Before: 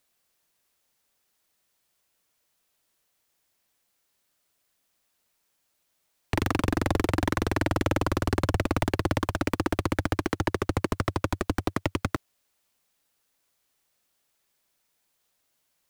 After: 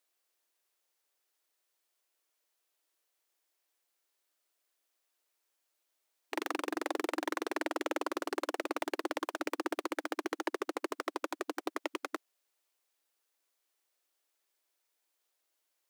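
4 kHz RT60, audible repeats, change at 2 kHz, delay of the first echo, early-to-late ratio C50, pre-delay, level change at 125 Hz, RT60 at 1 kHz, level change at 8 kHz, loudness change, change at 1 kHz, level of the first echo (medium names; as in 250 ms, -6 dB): no reverb, no echo, -7.0 dB, no echo, no reverb, no reverb, under -40 dB, no reverb, -7.0 dB, -9.0 dB, -7.0 dB, no echo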